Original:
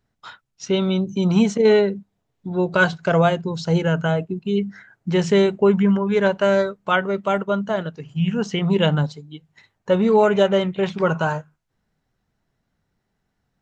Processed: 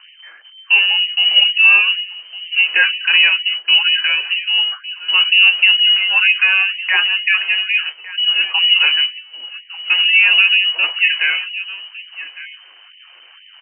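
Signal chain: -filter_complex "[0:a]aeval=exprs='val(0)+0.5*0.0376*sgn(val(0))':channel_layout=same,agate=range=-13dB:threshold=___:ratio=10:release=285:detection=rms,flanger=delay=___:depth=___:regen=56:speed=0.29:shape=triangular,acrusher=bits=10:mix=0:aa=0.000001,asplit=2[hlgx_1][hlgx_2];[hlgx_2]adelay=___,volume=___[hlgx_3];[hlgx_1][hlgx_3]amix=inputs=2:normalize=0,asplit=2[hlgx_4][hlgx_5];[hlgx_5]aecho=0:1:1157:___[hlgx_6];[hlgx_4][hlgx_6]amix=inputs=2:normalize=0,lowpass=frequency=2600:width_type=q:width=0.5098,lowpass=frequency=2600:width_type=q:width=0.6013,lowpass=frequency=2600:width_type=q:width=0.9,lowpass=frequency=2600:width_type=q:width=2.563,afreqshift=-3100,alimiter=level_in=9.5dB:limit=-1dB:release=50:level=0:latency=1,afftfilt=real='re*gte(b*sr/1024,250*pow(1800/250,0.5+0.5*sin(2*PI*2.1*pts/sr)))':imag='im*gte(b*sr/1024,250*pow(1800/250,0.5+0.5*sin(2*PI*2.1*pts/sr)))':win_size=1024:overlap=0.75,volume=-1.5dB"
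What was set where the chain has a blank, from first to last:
-22dB, 4.9, 6.6, 21, -12.5dB, 0.15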